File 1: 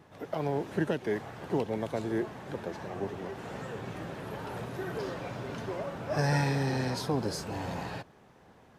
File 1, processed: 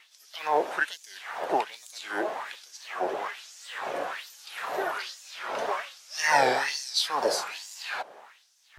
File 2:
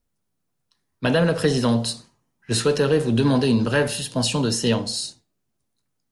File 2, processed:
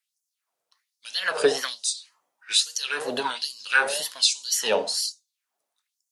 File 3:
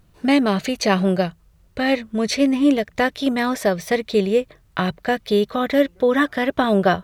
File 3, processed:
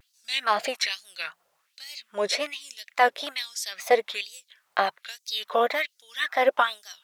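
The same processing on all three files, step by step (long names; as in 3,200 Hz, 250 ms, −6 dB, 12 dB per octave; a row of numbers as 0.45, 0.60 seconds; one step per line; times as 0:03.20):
auto-filter high-pass sine 1.2 Hz 570–6,400 Hz
tape wow and flutter 140 cents
normalise the peak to −6 dBFS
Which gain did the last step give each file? +8.0, 0.0, −2.5 decibels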